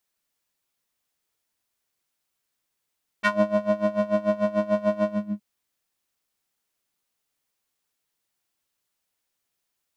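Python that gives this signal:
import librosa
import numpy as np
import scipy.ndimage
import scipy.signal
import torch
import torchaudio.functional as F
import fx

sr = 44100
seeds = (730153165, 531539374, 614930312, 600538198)

y = fx.sub_patch_tremolo(sr, seeds[0], note=56, wave='square', wave2='saw', interval_st=7, detune_cents=16, level2_db=-15.5, sub_db=-15.0, noise_db=-30.0, kind='bandpass', cutoff_hz=190.0, q=2.0, env_oct=3.5, env_decay_s=0.13, env_sustain_pct=45, attack_ms=20.0, decay_s=0.3, sustain_db=-5, release_s=0.33, note_s=1.84, lfo_hz=6.8, tremolo_db=19.0)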